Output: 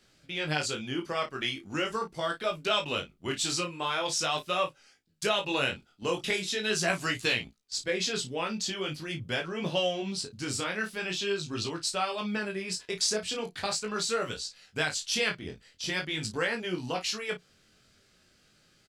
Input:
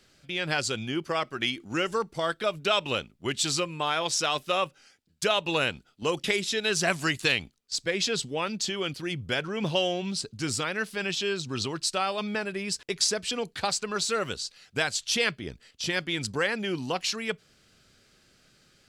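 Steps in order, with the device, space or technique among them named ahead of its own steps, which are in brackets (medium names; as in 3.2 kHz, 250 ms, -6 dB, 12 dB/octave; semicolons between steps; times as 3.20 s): double-tracked vocal (doubling 33 ms -9.5 dB; chorus 0.42 Hz, delay 17 ms, depth 6.3 ms)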